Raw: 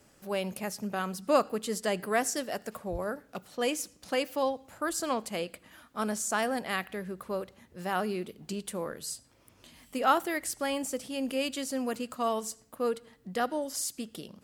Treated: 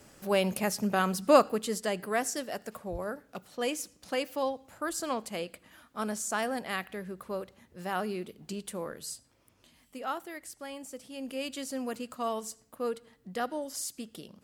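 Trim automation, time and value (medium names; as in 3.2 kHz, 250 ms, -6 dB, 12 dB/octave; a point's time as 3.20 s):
1.22 s +5.5 dB
1.94 s -2 dB
9.06 s -2 dB
10.12 s -10.5 dB
10.80 s -10.5 dB
11.62 s -3 dB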